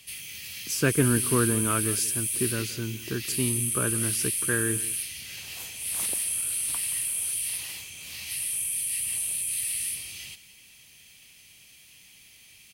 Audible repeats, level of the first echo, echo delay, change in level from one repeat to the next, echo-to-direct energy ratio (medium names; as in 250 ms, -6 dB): 1, -17.5 dB, 176 ms, no regular repeats, -17.5 dB